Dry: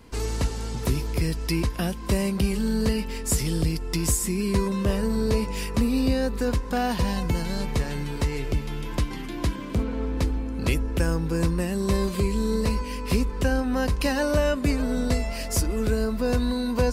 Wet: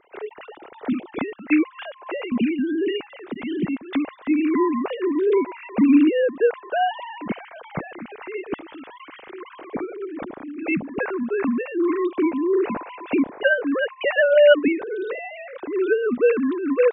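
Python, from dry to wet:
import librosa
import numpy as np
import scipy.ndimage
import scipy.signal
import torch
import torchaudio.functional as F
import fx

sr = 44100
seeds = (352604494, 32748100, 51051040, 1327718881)

y = fx.sine_speech(x, sr)
y = fx.highpass(y, sr, hz=380.0, slope=24, at=(1.86, 2.32))
y = fx.upward_expand(y, sr, threshold_db=-31.0, expansion=1.5)
y = y * 10.0 ** (5.0 / 20.0)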